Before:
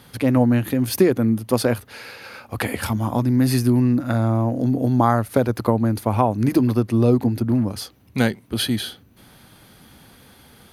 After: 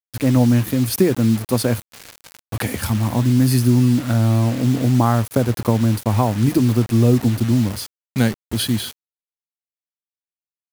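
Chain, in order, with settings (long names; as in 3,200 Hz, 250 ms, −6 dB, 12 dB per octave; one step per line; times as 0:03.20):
bass and treble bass +7 dB, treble +5 dB
bit reduction 5 bits
level −2 dB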